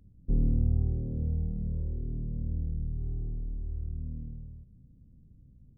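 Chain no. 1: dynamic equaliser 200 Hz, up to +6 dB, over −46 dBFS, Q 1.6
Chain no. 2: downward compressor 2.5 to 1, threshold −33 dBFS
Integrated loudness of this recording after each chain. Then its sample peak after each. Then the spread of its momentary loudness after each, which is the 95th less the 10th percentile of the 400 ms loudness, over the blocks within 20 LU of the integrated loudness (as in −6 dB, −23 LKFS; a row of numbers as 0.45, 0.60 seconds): −32.0, −38.5 LKFS; −14.5, −24.0 dBFS; 12, 22 LU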